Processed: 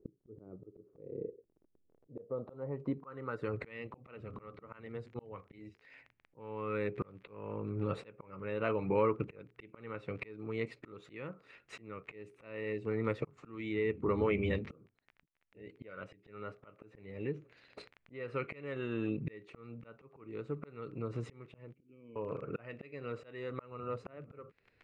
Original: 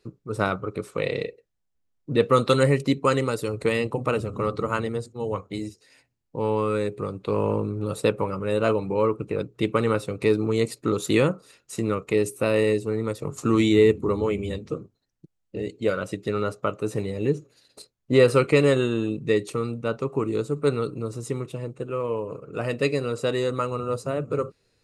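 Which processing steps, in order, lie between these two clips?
crackle 21 per s -37 dBFS; compression 2.5:1, threshold -30 dBFS, peak gain reduction 12 dB; low-pass sweep 370 Hz -> 2.2 kHz, 1.74–3.71 s; slow attack 747 ms; 21.74–22.16 s: cascade formant filter i

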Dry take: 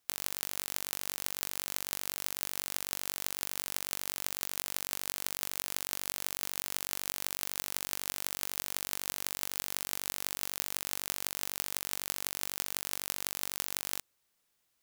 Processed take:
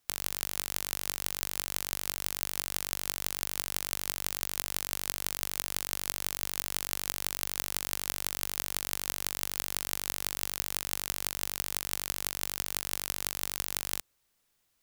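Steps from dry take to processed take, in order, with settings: bass shelf 91 Hz +9.5 dB; trim +2 dB

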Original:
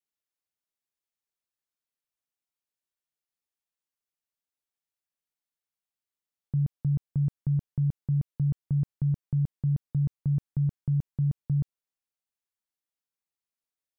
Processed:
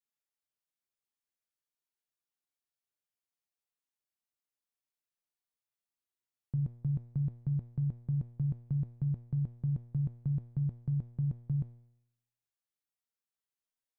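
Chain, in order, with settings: feedback comb 120 Hz, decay 0.78 s, harmonics all, mix 80%; trim +6.5 dB

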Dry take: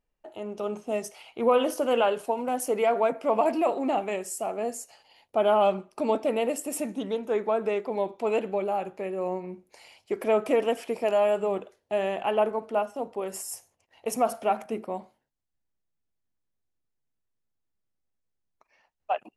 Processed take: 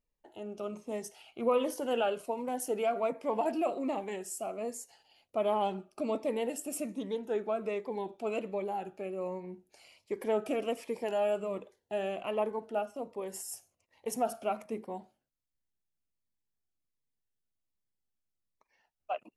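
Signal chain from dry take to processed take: Shepard-style phaser falling 1.3 Hz; trim -5 dB

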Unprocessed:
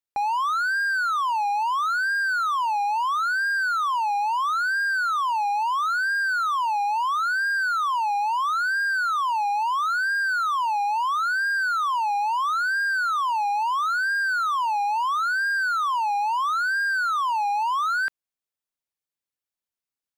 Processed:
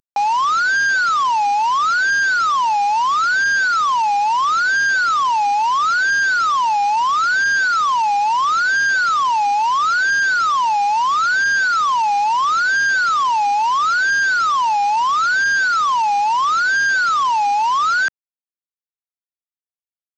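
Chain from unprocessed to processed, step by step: CVSD coder 32 kbps; trim +7.5 dB

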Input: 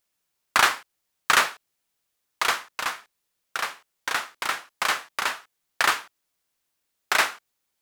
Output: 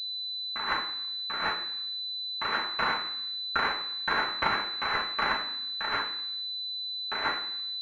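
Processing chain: compressor with a negative ratio -28 dBFS, ratio -1; reverberation RT60 0.65 s, pre-delay 3 ms, DRR -5 dB; class-D stage that switches slowly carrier 4 kHz; trim -4 dB

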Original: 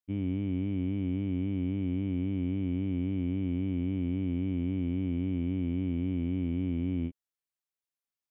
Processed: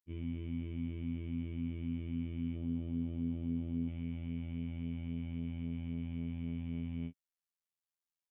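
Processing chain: peaking EQ 600 Hz -8.5 dB 1 oct, from 2.56 s 2.2 kHz, from 3.88 s 330 Hz; comb 7 ms, depth 52%; robot voice 83.8 Hz; trim -4.5 dB

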